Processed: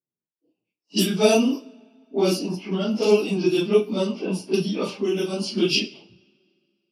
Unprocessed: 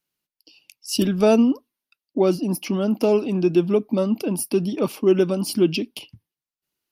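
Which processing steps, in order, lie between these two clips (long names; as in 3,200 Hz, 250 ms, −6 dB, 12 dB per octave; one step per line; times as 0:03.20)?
random phases in long frames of 100 ms
low-pass that shuts in the quiet parts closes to 390 Hz, open at −16 dBFS
dynamic equaliser 2,900 Hz, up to +6 dB, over −42 dBFS, Q 0.98
high-pass filter 130 Hz
bass and treble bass −1 dB, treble +14 dB
coupled-rooms reverb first 0.44 s, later 2.3 s, from −22 dB, DRR 10.5 dB
low-pass that shuts in the quiet parts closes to 2,900 Hz, open at −12.5 dBFS
0:04.79–0:05.53: downward compressor 4 to 1, threshold −19 dBFS, peak gain reduction 7 dB
level −2 dB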